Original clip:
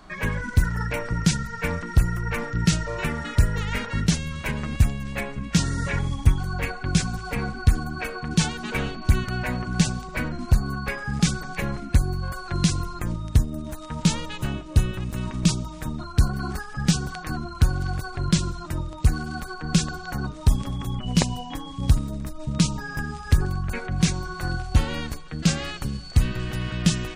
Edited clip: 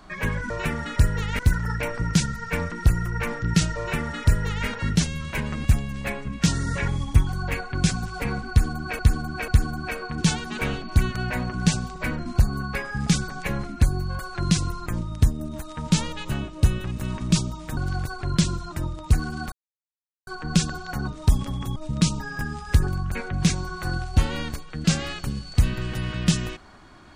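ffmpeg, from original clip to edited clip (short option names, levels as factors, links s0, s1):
-filter_complex "[0:a]asplit=8[s0][s1][s2][s3][s4][s5][s6][s7];[s0]atrim=end=0.502[s8];[s1]atrim=start=2.888:end=3.782[s9];[s2]atrim=start=0.498:end=8.102[s10];[s3]atrim=start=7.608:end=8.102[s11];[s4]atrim=start=7.608:end=15.902[s12];[s5]atrim=start=17.708:end=19.46,asetpts=PTS-STARTPTS,afade=t=out:st=1.748:d=0.004:c=hsin,apad=pad_dur=0.75[s13];[s6]atrim=start=19.46:end=20.952,asetpts=PTS-STARTPTS,afade=t=in:d=0.004:c=hsin[s14];[s7]atrim=start=22.338[s15];[s8][s9]acrossfade=d=0.004:c1=hsin:c2=hsin[s16];[s16][s10]acrossfade=d=0.004:c1=hsin:c2=hsin[s17];[s17][s11]acrossfade=d=0.004:c1=hsin:c2=hsin[s18];[s18][s12]acrossfade=d=0.004:c1=hsin:c2=hsin[s19];[s13][s14]concat=n=2:v=0:a=1[s20];[s19][s20]acrossfade=d=0.004:c1=hsin:c2=hsin[s21];[s21][s15]acrossfade=d=0.004:c1=hsin:c2=hsin"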